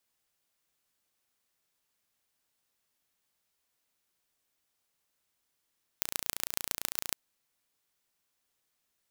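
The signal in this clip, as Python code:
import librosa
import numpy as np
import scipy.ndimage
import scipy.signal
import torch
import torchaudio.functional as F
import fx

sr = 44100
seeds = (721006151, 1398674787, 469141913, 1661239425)

y = fx.impulse_train(sr, length_s=1.11, per_s=28.9, accent_every=4, level_db=-1.5)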